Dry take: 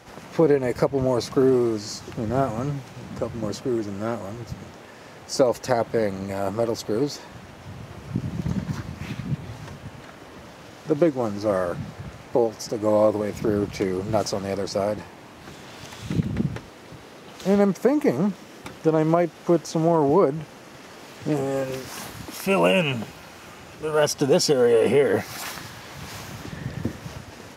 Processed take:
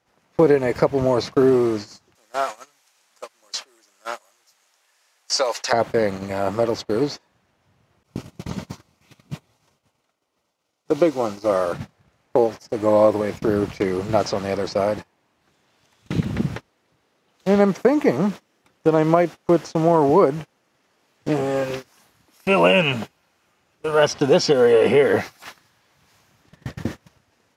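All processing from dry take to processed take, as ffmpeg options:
ffmpeg -i in.wav -filter_complex "[0:a]asettb=1/sr,asplit=3[link_01][link_02][link_03];[link_01]atrim=end=2.154[link_04];[link_02]atrim=start=2.15:end=5.73,asetpts=PTS-STARTPTS,afade=type=in:duration=0.004:curve=qsin,afade=type=out:start_time=3.576:duration=0.004:curve=qsin,highpass=770,equalizer=frequency=10000:width_type=o:width=2.4:gain=14[link_05];[link_03]atrim=start=5.726[link_06];[link_04][link_05]acrossfade=duration=0.004:curve1=hsin:curve2=qsin[link_07];[link_07][link_06]acrossfade=duration=0.004:curve1=qsin:curve2=hsin,asettb=1/sr,asplit=3[link_08][link_09][link_10];[link_08]atrim=end=8.034[link_11];[link_09]atrim=start=8.03:end=11.73,asetpts=PTS-STARTPTS,afade=type=in:duration=0.004:curve=qsin,afade=type=out:start_time=3.696:duration=0.004:curve=qsin,agate=range=-33dB:threshold=-37dB:ratio=3:release=100:detection=peak,bass=frequency=250:gain=-6,treble=frequency=4000:gain=6,bandreject=frequency=1700:width=5.2[link_12];[link_10]atrim=start=11.726[link_13];[link_11][link_12]acrossfade=duration=0.004:curve1=hsin:curve2=qsin[link_14];[link_14][link_13]acrossfade=duration=0.004:curve1=qsin:curve2=hsin,agate=range=-26dB:threshold=-30dB:ratio=16:detection=peak,acrossover=split=5200[link_15][link_16];[link_16]acompressor=threshold=-54dB:ratio=4:attack=1:release=60[link_17];[link_15][link_17]amix=inputs=2:normalize=0,lowshelf=frequency=490:gain=-4.5,volume=5.5dB" out.wav

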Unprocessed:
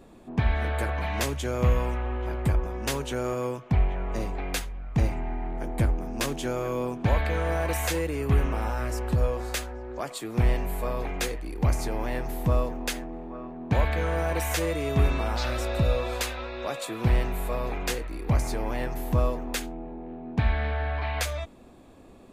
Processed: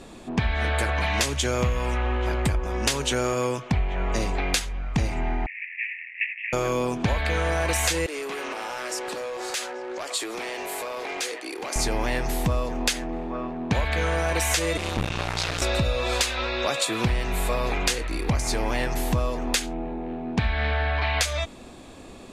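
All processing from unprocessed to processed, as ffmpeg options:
ffmpeg -i in.wav -filter_complex "[0:a]asettb=1/sr,asplit=3[link_01][link_02][link_03];[link_01]atrim=end=5.464[link_04];[link_02]atrim=start=5.46:end=6.53,asetpts=PTS-STARTPTS,afade=type=in:duration=0.004:curve=qsin,afade=type=out:start_time=1.066:duration=0.004:curve=qsin,afreqshift=110,acrusher=bits=4:mix=0:aa=0.5,asuperpass=centerf=2200:order=12:qfactor=2.5[link_05];[link_03]atrim=start=6.526[link_06];[link_04][link_05]acrossfade=duration=0.004:curve1=hsin:curve2=qsin[link_07];[link_07][link_06]acrossfade=duration=0.004:curve1=qsin:curve2=hsin,asettb=1/sr,asplit=3[link_08][link_09][link_10];[link_08]atrim=end=8.064[link_11];[link_09]atrim=start=8.06:end=11.76,asetpts=PTS-STARTPTS,afade=type=in:duration=0.004:curve=qsin,afade=type=out:start_time=3.696:duration=0.004:curve=qsin,highpass=frequency=330:width=0.5412,highpass=frequency=330:width=1.3066,acompressor=threshold=-35dB:ratio=10:attack=3.2:release=140:knee=1:detection=peak,asoftclip=type=hard:threshold=-36dB[link_12];[link_10]atrim=start=11.756[link_13];[link_11][link_12]acrossfade=duration=0.004:curve1=hsin:curve2=qsin[link_14];[link_14][link_13]acrossfade=duration=0.004:curve1=qsin:curve2=hsin,asettb=1/sr,asplit=3[link_15][link_16][link_17];[link_15]atrim=end=14.774[link_18];[link_16]atrim=start=14.77:end=15.62,asetpts=PTS-STARTPTS,afade=type=in:duration=0.004:curve=qsin,afade=type=out:start_time=0.846:duration=0.004:curve=qsin,highpass=frequency=84:poles=1,aeval=exprs='max(val(0),0)':channel_layout=same,aeval=exprs='val(0)*sin(2*PI*86*n/s)':channel_layout=same[link_19];[link_17]atrim=start=15.616[link_20];[link_18][link_19]acrossfade=duration=0.004:curve1=hsin:curve2=qsin[link_21];[link_21][link_20]acrossfade=duration=0.004:curve1=qsin:curve2=hsin,lowpass=8200,highshelf=frequency=2100:gain=11.5,acompressor=threshold=-27dB:ratio=6,volume=6.5dB" out.wav

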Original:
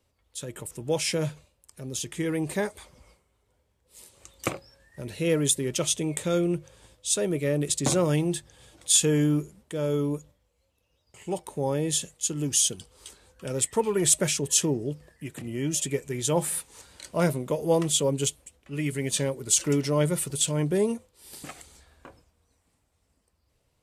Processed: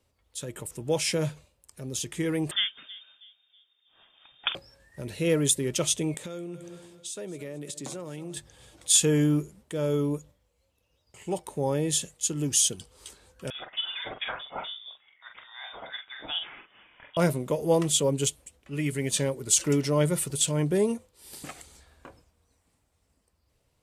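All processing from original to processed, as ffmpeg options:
ffmpeg -i in.wav -filter_complex "[0:a]asettb=1/sr,asplit=3[link_01][link_02][link_03];[link_01]atrim=end=2.514[link_04];[link_02]atrim=start=2.51:end=4.55,asetpts=PTS-STARTPTS,afade=type=in:duration=0.004:curve=qsin,afade=type=out:start_time=2.036:duration=0.004:curve=qsin,asplit=2[link_05][link_06];[link_06]adelay=322,lowpass=frequency=820:poles=1,volume=-16dB,asplit=2[link_07][link_08];[link_08]adelay=322,lowpass=frequency=820:poles=1,volume=0.41,asplit=2[link_09][link_10];[link_10]adelay=322,lowpass=frequency=820:poles=1,volume=0.41,asplit=2[link_11][link_12];[link_12]adelay=322,lowpass=frequency=820:poles=1,volume=0.41[link_13];[link_05][link_07][link_09][link_11][link_13]amix=inputs=5:normalize=0,atrim=end_sample=89964,lowpass=frequency=3100:width_type=q:width=0.5098,lowpass=frequency=3100:width_type=q:width=0.6013,lowpass=frequency=3100:width_type=q:width=0.9,lowpass=frequency=3100:width_type=q:width=2.563,afreqshift=-3700[link_14];[link_03]atrim=start=4.546[link_15];[link_04][link_14]acrossfade=duration=0.004:curve1=hsin:curve2=qsin[link_16];[link_16][link_15]acrossfade=duration=0.004:curve1=qsin:curve2=hsin,asettb=1/sr,asplit=3[link_17][link_18][link_19];[link_17]atrim=end=6.144[link_20];[link_18]atrim=start=6.14:end=8.37,asetpts=PTS-STARTPTS,afade=type=in:duration=0.004:curve=qsin,afade=type=out:start_time=2.226:duration=0.004:curve=qsin,highpass=150,aecho=1:1:218|436|654:0.119|0.0475|0.019,atrim=end_sample=98343,acompressor=threshold=-34dB:ratio=8:attack=3.2:release=140:knee=1:detection=peak[link_21];[link_19]atrim=start=8.366[link_22];[link_20][link_21]acrossfade=duration=0.004:curve1=hsin:curve2=qsin[link_23];[link_23][link_22]acrossfade=duration=0.004:curve1=qsin:curve2=hsin,asettb=1/sr,asplit=3[link_24][link_25][link_26];[link_24]atrim=end=13.504[link_27];[link_25]atrim=start=13.5:end=17.17,asetpts=PTS-STARTPTS,afade=type=in:duration=0.004:curve=qsin,afade=type=out:start_time=3.666:duration=0.004:curve=qsin,highpass=830,asplit=2[link_28][link_29];[link_29]adelay=44,volume=-6dB[link_30];[link_28][link_30]amix=inputs=2:normalize=0,atrim=end_sample=161847,lowpass=frequency=3300:width_type=q:width=0.5098,lowpass=frequency=3300:width_type=q:width=0.6013,lowpass=frequency=3300:width_type=q:width=0.9,lowpass=frequency=3300:width_type=q:width=2.563,afreqshift=-3900[link_31];[link_26]atrim=start=17.166[link_32];[link_27][link_31]acrossfade=duration=0.004:curve1=hsin:curve2=qsin[link_33];[link_33][link_32]acrossfade=duration=0.004:curve1=qsin:curve2=hsin" out.wav

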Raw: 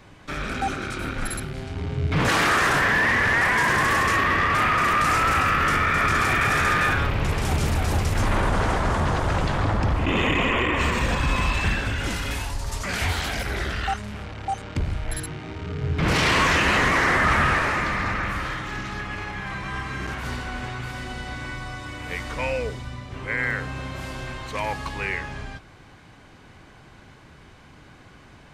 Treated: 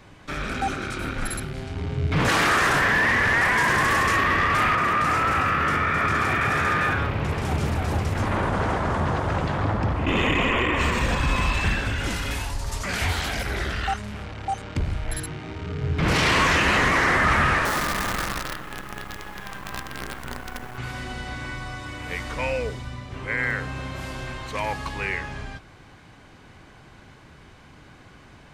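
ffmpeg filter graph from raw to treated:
ffmpeg -i in.wav -filter_complex "[0:a]asettb=1/sr,asplit=3[link_01][link_02][link_03];[link_01]atrim=end=4.754[link_04];[link_02]atrim=start=4.75:end=10.07,asetpts=PTS-STARTPTS,afade=type=in:duration=0.004:curve=qsin,afade=type=out:start_time=5.316:duration=0.004:curve=qsin,highpass=69,highshelf=frequency=3200:gain=-8.5[link_05];[link_03]atrim=start=10.066[link_06];[link_04][link_05]acrossfade=duration=0.004:curve1=hsin:curve2=qsin[link_07];[link_07][link_06]acrossfade=duration=0.004:curve1=qsin:curve2=hsin,asettb=1/sr,asplit=3[link_08][link_09][link_10];[link_08]atrim=end=17.654[link_11];[link_09]atrim=start=17.65:end=20.78,asetpts=PTS-STARTPTS,afade=type=in:duration=0.004:curve=qsin,afade=type=out:start_time=3.126:duration=0.004:curve=qsin,lowpass=frequency=1900:width=0.5412,lowpass=frequency=1900:width=1.3066,equalizer=frequency=94:width=2:gain=-8,acrusher=bits=5:dc=4:mix=0:aa=0.000001[link_12];[link_10]atrim=start=20.776[link_13];[link_11][link_12]acrossfade=duration=0.004:curve1=hsin:curve2=qsin[link_14];[link_14][link_13]acrossfade=duration=0.004:curve1=qsin:curve2=hsin" out.wav

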